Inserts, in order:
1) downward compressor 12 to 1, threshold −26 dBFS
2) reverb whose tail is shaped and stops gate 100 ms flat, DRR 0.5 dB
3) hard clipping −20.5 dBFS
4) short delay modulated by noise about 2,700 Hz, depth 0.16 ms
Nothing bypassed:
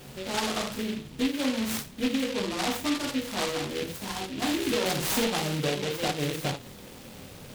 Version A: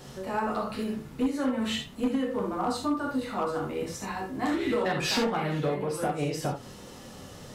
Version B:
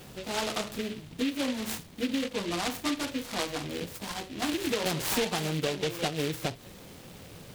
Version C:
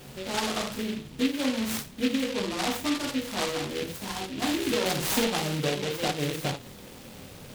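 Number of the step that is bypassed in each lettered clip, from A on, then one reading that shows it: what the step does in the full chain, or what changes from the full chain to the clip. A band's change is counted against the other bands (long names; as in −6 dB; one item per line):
4, 8 kHz band −7.0 dB
2, change in crest factor +2.5 dB
3, change in crest factor +7.0 dB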